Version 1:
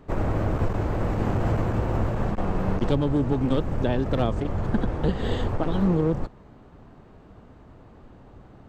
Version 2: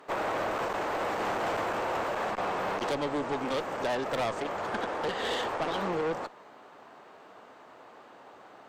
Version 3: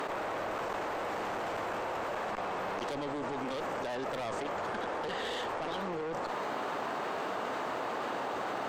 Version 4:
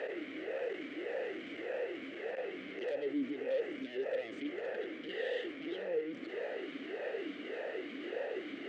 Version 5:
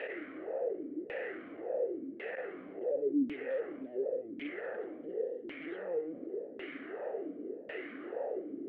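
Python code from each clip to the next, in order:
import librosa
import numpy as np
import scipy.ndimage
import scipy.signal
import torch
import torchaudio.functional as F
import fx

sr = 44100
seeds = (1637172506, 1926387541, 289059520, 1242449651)

y1 = scipy.signal.sosfilt(scipy.signal.butter(2, 650.0, 'highpass', fs=sr, output='sos'), x)
y1 = fx.tube_stage(y1, sr, drive_db=33.0, bias=0.3)
y1 = y1 * 10.0 ** (7.5 / 20.0)
y2 = fx.env_flatten(y1, sr, amount_pct=100)
y2 = y2 * 10.0 ** (-8.0 / 20.0)
y3 = fx.vowel_sweep(y2, sr, vowels='e-i', hz=1.7)
y3 = y3 * 10.0 ** (7.5 / 20.0)
y4 = fx.rattle_buzz(y3, sr, strikes_db=-44.0, level_db=-47.0)
y4 = fx.filter_lfo_lowpass(y4, sr, shape='saw_down', hz=0.91, low_hz=240.0, high_hz=2700.0, q=2.3)
y4 = y4 * 10.0 ** (-2.0 / 20.0)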